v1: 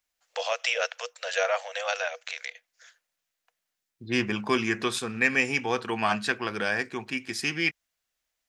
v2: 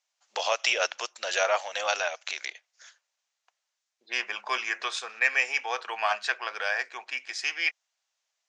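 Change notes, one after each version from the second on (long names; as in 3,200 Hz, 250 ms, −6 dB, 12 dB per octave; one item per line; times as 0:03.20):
first voice: remove Chebyshev high-pass with heavy ripple 470 Hz, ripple 6 dB
master: add elliptic band-pass filter 610–6,700 Hz, stop band 80 dB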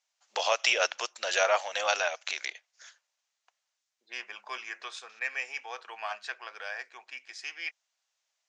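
second voice −9.5 dB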